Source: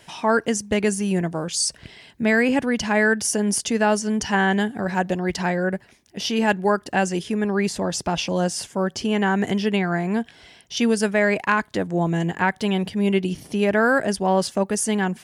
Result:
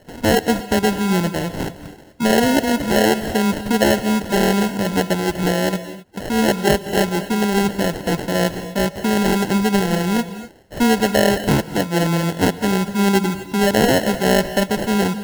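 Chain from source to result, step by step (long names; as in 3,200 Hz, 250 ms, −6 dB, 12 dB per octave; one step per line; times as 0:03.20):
high-shelf EQ 2,500 Hz −7 dB
decimation without filtering 37×
reverb whose tail is shaped and stops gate 280 ms rising, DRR 12 dB
level +4 dB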